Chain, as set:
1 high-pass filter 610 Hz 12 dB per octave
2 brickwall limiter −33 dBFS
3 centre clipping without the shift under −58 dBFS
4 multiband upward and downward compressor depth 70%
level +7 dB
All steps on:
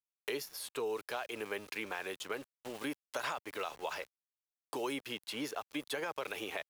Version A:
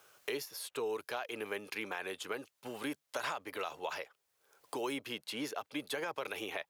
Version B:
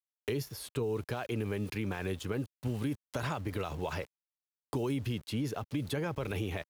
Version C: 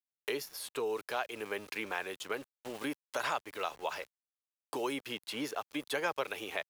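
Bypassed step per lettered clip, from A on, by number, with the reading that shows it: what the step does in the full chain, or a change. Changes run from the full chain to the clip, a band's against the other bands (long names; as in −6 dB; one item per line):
3, distortion level −21 dB
1, 125 Hz band +24.5 dB
2, change in momentary loudness spread +2 LU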